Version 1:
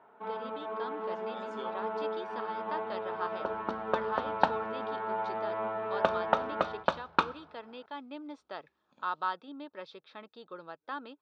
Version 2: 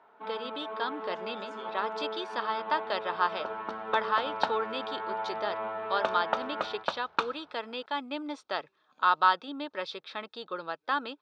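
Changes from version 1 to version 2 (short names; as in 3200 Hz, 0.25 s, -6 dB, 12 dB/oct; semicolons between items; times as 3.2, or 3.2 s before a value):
speech +9.5 dB; second sound: send off; master: add tilt +2 dB/oct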